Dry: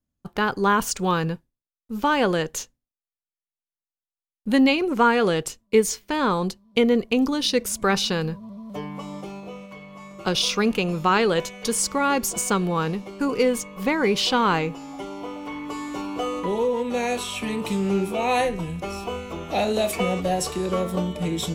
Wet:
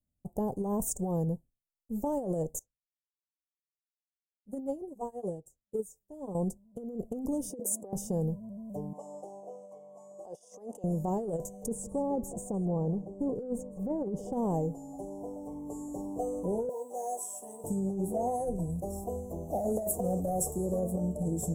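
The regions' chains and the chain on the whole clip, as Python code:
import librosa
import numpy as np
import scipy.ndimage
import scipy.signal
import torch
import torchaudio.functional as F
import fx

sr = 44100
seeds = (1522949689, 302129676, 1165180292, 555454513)

y = fx.chain(x, sr, fx.notch_comb(f0_hz=230.0),
    fx.upward_expand(threshold_db=-30.0, expansion=2.5), at=(2.59, 6.35))
y = fx.chain(y, sr, fx.highpass(hz=250.0, slope=24),
    fx.high_shelf(hz=3800.0, db=-8.5),
    fx.over_compress(threshold_db=-28.0, ratio=-0.5), at=(7.5, 7.93))
y = fx.chain(y, sr, fx.highpass(hz=640.0, slope=12),
    fx.air_absorb(metres=64.0),
    fx.over_compress(threshold_db=-35.0, ratio=-1.0), at=(8.93, 10.84))
y = fx.chain(y, sr, fx.lowpass(hz=1400.0, slope=6),
    fx.echo_single(ms=161, db=-19.0), at=(11.66, 14.33))
y = fx.chain(y, sr, fx.highpass(hz=720.0, slope=12),
    fx.mod_noise(seeds[0], snr_db=32),
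    fx.doubler(ms=15.0, db=-5.5), at=(16.69, 17.64))
y = fx.chain(y, sr, fx.peak_eq(hz=14000.0, db=7.5, octaves=0.47),
    fx.clip_hard(threshold_db=-17.5), at=(18.71, 20.79))
y = scipy.signal.sosfilt(scipy.signal.ellip(3, 1.0, 40, [690.0, 7700.0], 'bandstop', fs=sr, output='sos'), y)
y = fx.peak_eq(y, sr, hz=340.0, db=-5.0, octaves=1.2)
y = fx.over_compress(y, sr, threshold_db=-27.0, ratio=-0.5)
y = F.gain(torch.from_numpy(y), -3.0).numpy()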